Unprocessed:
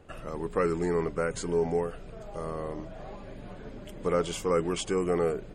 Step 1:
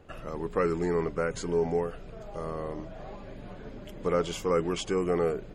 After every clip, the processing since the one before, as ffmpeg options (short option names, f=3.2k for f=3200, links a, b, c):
-af "equalizer=f=8.6k:w=5.3:g=-12.5"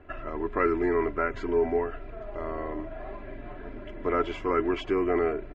-af "lowpass=f=2k:t=q:w=1.6,aecho=1:1:3:0.81"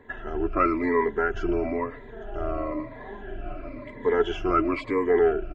-af "afftfilt=real='re*pow(10,17/40*sin(2*PI*(1*log(max(b,1)*sr/1024/100)/log(2)-(-1)*(pts-256)/sr)))':imag='im*pow(10,17/40*sin(2*PI*(1*log(max(b,1)*sr/1024/100)/log(2)-(-1)*(pts-256)/sr)))':win_size=1024:overlap=0.75"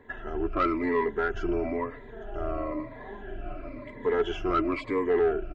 -af "asoftclip=type=tanh:threshold=-14dB,volume=-2dB"